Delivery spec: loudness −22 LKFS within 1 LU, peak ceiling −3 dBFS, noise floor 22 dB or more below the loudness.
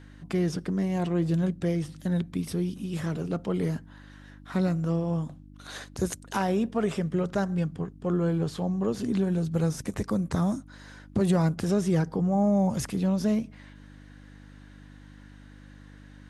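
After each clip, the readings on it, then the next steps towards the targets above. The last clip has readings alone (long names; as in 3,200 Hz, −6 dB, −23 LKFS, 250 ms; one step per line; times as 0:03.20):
mains hum 50 Hz; hum harmonics up to 300 Hz; level of the hum −48 dBFS; integrated loudness −28.0 LKFS; sample peak −14.0 dBFS; target loudness −22.0 LKFS
→ hum removal 50 Hz, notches 6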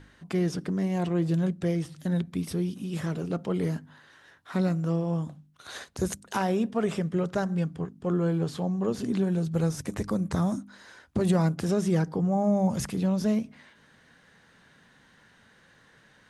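mains hum none found; integrated loudness −28.5 LKFS; sample peak −13.5 dBFS; target loudness −22.0 LKFS
→ level +6.5 dB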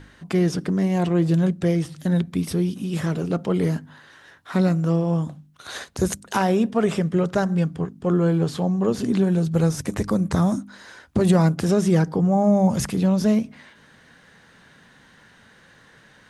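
integrated loudness −22.0 LKFS; sample peak −7.0 dBFS; background noise floor −53 dBFS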